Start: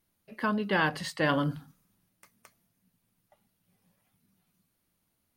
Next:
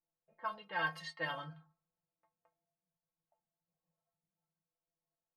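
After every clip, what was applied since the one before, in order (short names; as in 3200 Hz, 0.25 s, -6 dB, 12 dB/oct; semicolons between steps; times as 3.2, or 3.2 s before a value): resonant low shelf 440 Hz -10.5 dB, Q 1.5; metallic resonator 160 Hz, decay 0.22 s, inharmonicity 0.008; low-pass opened by the level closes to 750 Hz, open at -34.5 dBFS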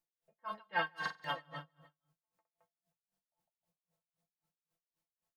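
on a send: feedback echo 0.155 s, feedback 31%, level -5 dB; on the sum: stuck buffer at 1.01/2.99, samples 2048, times 4; dB-linear tremolo 3.8 Hz, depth 30 dB; gain +5.5 dB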